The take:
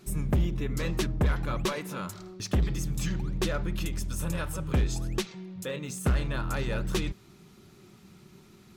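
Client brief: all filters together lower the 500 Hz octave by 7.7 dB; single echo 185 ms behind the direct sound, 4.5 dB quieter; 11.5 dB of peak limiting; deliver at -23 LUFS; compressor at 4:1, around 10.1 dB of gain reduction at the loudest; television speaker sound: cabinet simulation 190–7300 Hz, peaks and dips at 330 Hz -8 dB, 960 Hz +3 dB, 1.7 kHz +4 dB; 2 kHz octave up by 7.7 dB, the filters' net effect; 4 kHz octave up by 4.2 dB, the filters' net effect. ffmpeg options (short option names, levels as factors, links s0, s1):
-af "equalizer=f=500:t=o:g=-8,equalizer=f=2000:t=o:g=7,equalizer=f=4000:t=o:g=3,acompressor=threshold=0.02:ratio=4,alimiter=level_in=2.82:limit=0.0631:level=0:latency=1,volume=0.355,highpass=f=190:w=0.5412,highpass=f=190:w=1.3066,equalizer=f=330:t=q:w=4:g=-8,equalizer=f=960:t=q:w=4:g=3,equalizer=f=1700:t=q:w=4:g=4,lowpass=f=7300:w=0.5412,lowpass=f=7300:w=1.3066,aecho=1:1:185:0.596,volume=11.9"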